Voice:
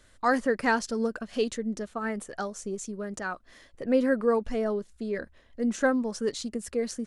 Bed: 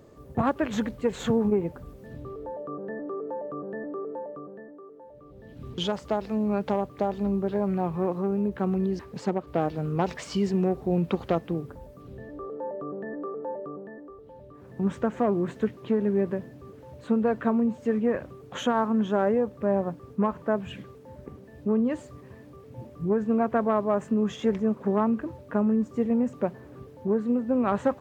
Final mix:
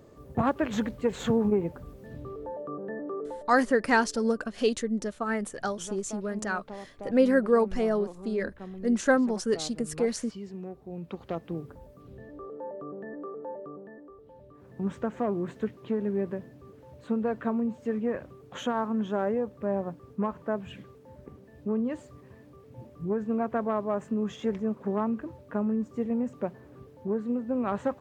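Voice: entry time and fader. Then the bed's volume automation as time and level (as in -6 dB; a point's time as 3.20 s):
3.25 s, +2.0 dB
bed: 3.26 s -1 dB
3.54 s -15 dB
10.91 s -15 dB
11.58 s -4.5 dB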